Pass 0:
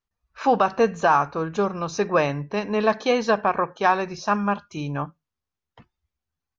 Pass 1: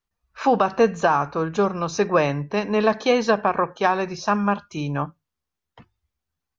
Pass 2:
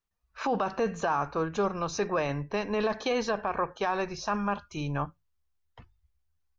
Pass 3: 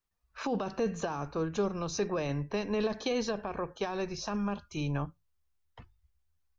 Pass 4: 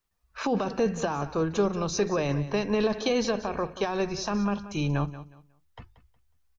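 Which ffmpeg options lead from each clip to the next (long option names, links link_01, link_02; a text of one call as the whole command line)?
ffmpeg -i in.wav -filter_complex "[0:a]bandreject=frequency=50:width_type=h:width=6,bandreject=frequency=100:width_type=h:width=6,acrossover=split=490[link_01][link_02];[link_02]acompressor=threshold=-19dB:ratio=6[link_03];[link_01][link_03]amix=inputs=2:normalize=0,volume=2.5dB" out.wav
ffmpeg -i in.wav -af "asubboost=boost=7.5:cutoff=69,alimiter=limit=-14.5dB:level=0:latency=1:release=13,volume=-4.5dB" out.wav
ffmpeg -i in.wav -filter_complex "[0:a]acrossover=split=500|3000[link_01][link_02][link_03];[link_02]acompressor=threshold=-42dB:ratio=3[link_04];[link_01][link_04][link_03]amix=inputs=3:normalize=0" out.wav
ffmpeg -i in.wav -af "aecho=1:1:182|364|546:0.188|0.0471|0.0118,volume=5.5dB" out.wav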